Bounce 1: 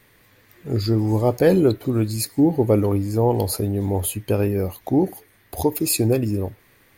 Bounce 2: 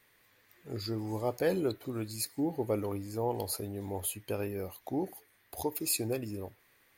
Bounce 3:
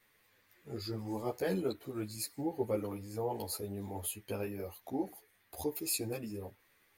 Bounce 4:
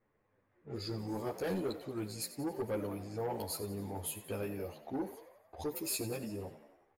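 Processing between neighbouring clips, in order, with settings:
bass shelf 390 Hz -10 dB; trim -9 dB
three-phase chorus
saturation -31 dBFS, distortion -13 dB; level-controlled noise filter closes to 750 Hz, open at -37.5 dBFS; frequency-shifting echo 90 ms, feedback 58%, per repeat +63 Hz, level -14 dB; trim +1 dB

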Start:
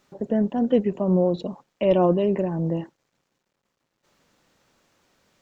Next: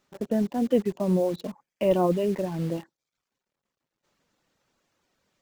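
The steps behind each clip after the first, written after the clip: reverb removal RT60 0.6 s; in parallel at -3 dB: bit crusher 6-bit; on the sum: trim -7 dB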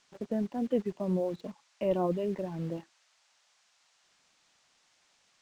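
treble shelf 5.1 kHz -11.5 dB; band noise 610–7100 Hz -63 dBFS; trim -6.5 dB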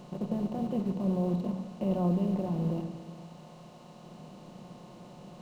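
spectral levelling over time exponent 0.4; graphic EQ 125/500/2000 Hz +8/-7/-10 dB; simulated room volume 1500 m³, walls mixed, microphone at 0.89 m; trim -4 dB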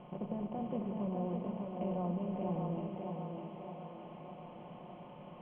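compression 3:1, threshold -30 dBFS, peak gain reduction 5.5 dB; rippled Chebyshev low-pass 3.3 kHz, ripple 6 dB; thinning echo 603 ms, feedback 58%, high-pass 190 Hz, level -3 dB

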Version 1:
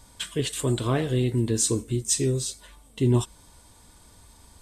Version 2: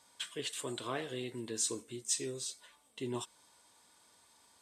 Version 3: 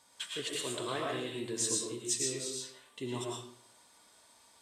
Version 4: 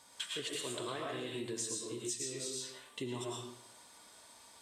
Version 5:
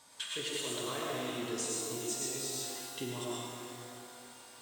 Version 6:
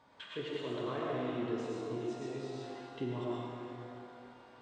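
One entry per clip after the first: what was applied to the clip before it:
frequency weighting A; trim -8.5 dB
reverberation RT60 0.65 s, pre-delay 70 ms, DRR -1.5 dB
compression, threshold -41 dBFS, peak gain reduction 12.5 dB; trim +4 dB
pitch-shifted reverb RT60 2.5 s, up +12 st, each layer -8 dB, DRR 0.5 dB
tape spacing loss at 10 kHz 42 dB; trim +4 dB

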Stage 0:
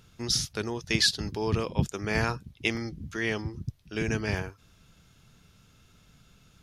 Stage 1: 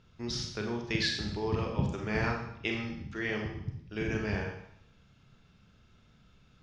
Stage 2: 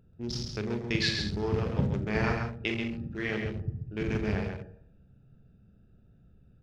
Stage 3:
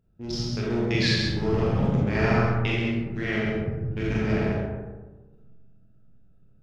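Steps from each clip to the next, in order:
distance through air 150 m; Schroeder reverb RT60 0.73 s, combs from 30 ms, DRR 1 dB; trim -4.5 dB
local Wiener filter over 41 samples; delay 134 ms -5.5 dB; trim +2.5 dB
gate -55 dBFS, range -9 dB; algorithmic reverb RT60 1.3 s, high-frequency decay 0.35×, pre-delay 0 ms, DRR -4.5 dB

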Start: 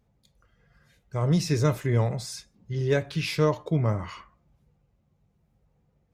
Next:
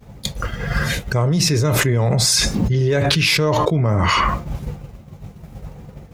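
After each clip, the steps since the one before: expander -58 dBFS; level flattener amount 100%; trim +2.5 dB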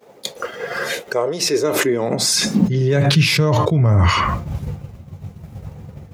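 high-pass sweep 440 Hz -> 82 Hz, 1.39–3.93 s; trim -1 dB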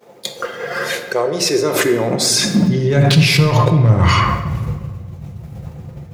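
hard clipper -8.5 dBFS, distortion -23 dB; simulated room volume 1400 m³, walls mixed, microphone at 0.85 m; trim +1.5 dB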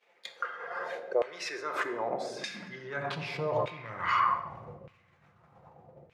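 LFO band-pass saw down 0.82 Hz 520–2600 Hz; trim -6.5 dB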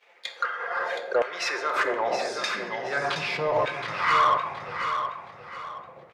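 overdrive pedal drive 13 dB, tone 6.1 kHz, clips at -15 dBFS; feedback delay 721 ms, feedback 32%, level -7.5 dB; trim +2 dB

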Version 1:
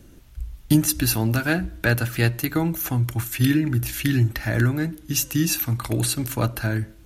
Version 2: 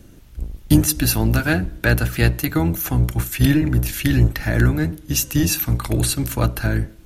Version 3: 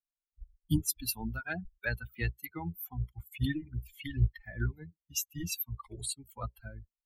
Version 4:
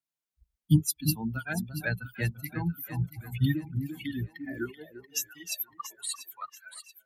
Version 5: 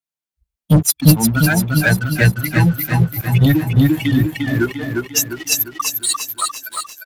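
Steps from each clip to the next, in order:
octave divider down 1 oct, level -2 dB; trim +2.5 dB
expander on every frequency bin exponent 3; peaking EQ 410 Hz -6.5 dB 1.4 oct; trim -8.5 dB
echo whose repeats swap between lows and highs 342 ms, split 1.1 kHz, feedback 59%, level -7.5 dB; high-pass sweep 140 Hz -> 2.4 kHz, 3.67–6.93 s; wow and flutter 25 cents; trim +2 dB
waveshaping leveller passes 3; on a send: feedback delay 351 ms, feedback 45%, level -4.5 dB; on the sum: trim +5 dB

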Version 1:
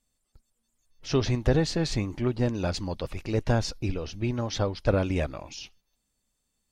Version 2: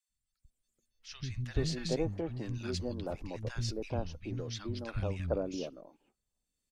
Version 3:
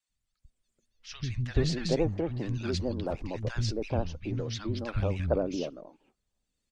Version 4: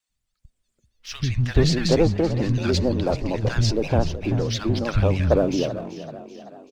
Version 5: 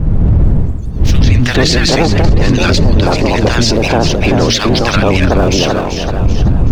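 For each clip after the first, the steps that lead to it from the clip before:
rotary cabinet horn 1 Hz; three bands offset in time highs, lows, mids 90/430 ms, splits 200/1200 Hz; trim -6 dB
vibrato 13 Hz 79 cents; distance through air 53 m; trim +5.5 dB
waveshaping leveller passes 1; frequency-shifting echo 384 ms, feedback 52%, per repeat +41 Hz, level -14 dB; trim +6 dB
spectral peaks clipped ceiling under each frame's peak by 15 dB; wind noise 92 Hz -18 dBFS; loudness maximiser +17.5 dB; trim -1 dB

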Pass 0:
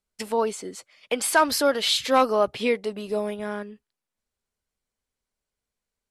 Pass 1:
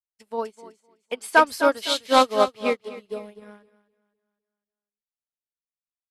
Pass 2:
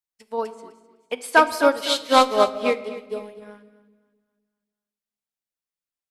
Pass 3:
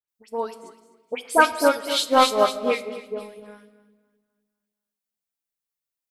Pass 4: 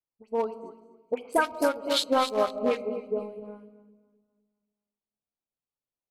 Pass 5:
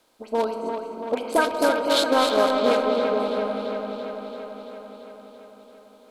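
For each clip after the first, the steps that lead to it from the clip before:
on a send: feedback delay 254 ms, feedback 46%, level -7 dB; on the sum: upward expansion 2.5:1, over -38 dBFS; trim +4.5 dB
reverberation RT60 1.3 s, pre-delay 7 ms, DRR 12 dB; trim +1.5 dB
treble shelf 9.2 kHz +7.5 dB; phase dispersion highs, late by 86 ms, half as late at 2.2 kHz; trim -1 dB
local Wiener filter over 25 samples; compression 6:1, threshold -24 dBFS, peak gain reduction 13.5 dB; trim +3 dB
spectral levelling over time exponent 0.6; feedback echo behind a low-pass 337 ms, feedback 68%, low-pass 3.2 kHz, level -6 dB; trim +1.5 dB

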